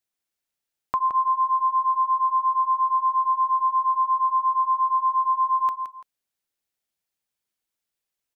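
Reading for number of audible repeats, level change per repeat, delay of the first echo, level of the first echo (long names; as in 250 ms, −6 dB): 2, −11.0 dB, 169 ms, −8.5 dB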